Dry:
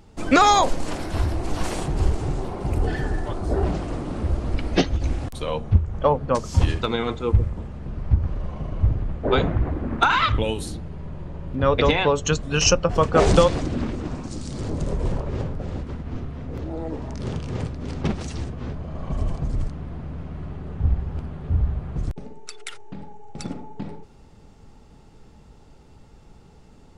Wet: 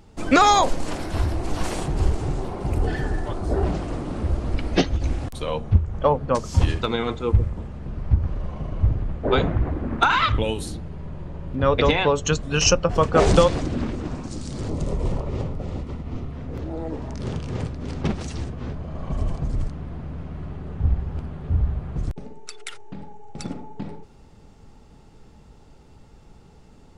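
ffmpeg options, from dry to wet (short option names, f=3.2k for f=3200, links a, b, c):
-filter_complex "[0:a]asettb=1/sr,asplit=3[a][b][c];[a]atrim=end=14.684[d];[b]atrim=start=14.68:end=16.32,asetpts=PTS-STARTPTS,afade=t=in:d=0.004:c=qsin,afade=t=out:st=1.636:d=0.004:c=qsin,bandreject=f=1.6k:w=5.6[e];[c]atrim=start=16.316[f];[d][e]acrossfade=d=0.004:c1=hsin:c2=qsin[g];[g][f]acrossfade=d=0.004:c1=qsin:c2=hsin"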